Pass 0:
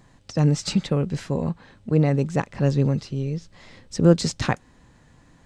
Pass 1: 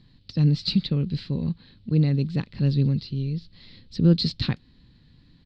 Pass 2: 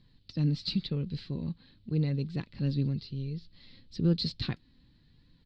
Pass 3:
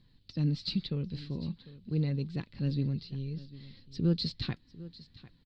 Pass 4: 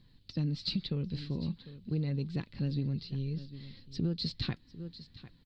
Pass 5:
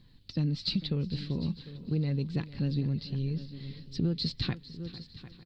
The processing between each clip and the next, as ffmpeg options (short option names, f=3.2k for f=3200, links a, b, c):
-af "firequalizer=gain_entry='entry(200,0);entry(650,-17);entry(4300,8);entry(6300,-23)':delay=0.05:min_phase=1"
-af "flanger=delay=1.8:depth=2.1:regen=65:speed=0.94:shape=triangular,volume=-2.5dB"
-af "aecho=1:1:749:0.126,volume=-1.5dB"
-af "acompressor=threshold=-30dB:ratio=12,volume=2dB"
-af "aecho=1:1:451|902|1353|1804:0.141|0.0636|0.0286|0.0129,volume=3dB"